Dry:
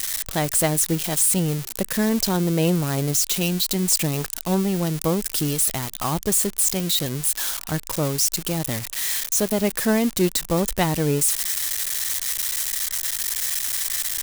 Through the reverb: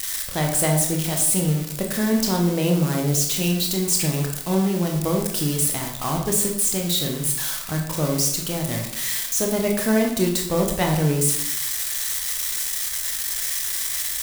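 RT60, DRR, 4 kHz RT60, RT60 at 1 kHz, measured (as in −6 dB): 0.70 s, 1.0 dB, 0.55 s, 0.65 s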